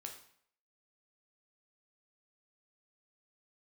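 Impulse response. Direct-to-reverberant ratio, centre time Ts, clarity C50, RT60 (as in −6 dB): 2.0 dB, 20 ms, 7.5 dB, 0.60 s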